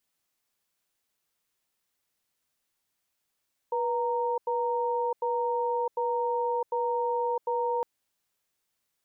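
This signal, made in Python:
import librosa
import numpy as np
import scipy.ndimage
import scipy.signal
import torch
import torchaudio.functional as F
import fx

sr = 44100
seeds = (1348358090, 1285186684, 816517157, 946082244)

y = fx.cadence(sr, length_s=4.11, low_hz=486.0, high_hz=928.0, on_s=0.66, off_s=0.09, level_db=-28.0)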